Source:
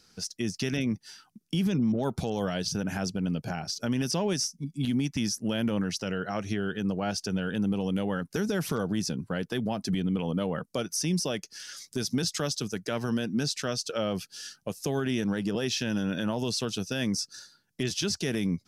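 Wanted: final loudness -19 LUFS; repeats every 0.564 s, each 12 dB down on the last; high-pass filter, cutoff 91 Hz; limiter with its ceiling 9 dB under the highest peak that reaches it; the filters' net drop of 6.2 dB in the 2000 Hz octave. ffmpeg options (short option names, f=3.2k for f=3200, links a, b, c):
-af "highpass=91,equalizer=f=2k:t=o:g=-9,alimiter=level_in=2.5dB:limit=-24dB:level=0:latency=1,volume=-2.5dB,aecho=1:1:564|1128|1692:0.251|0.0628|0.0157,volume=16.5dB"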